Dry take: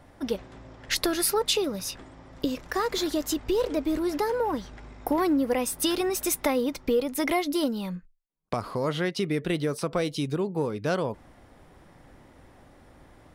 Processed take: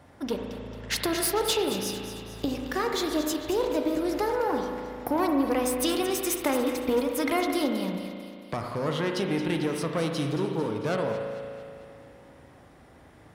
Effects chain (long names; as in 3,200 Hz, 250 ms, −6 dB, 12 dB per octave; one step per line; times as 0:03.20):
one-sided soft clipper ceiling −25.5 dBFS
high-pass filter 60 Hz
echo with a time of its own for lows and highs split 1,800 Hz, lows 92 ms, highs 223 ms, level −10.5 dB
spring reverb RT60 2.5 s, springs 36 ms, chirp 40 ms, DRR 4 dB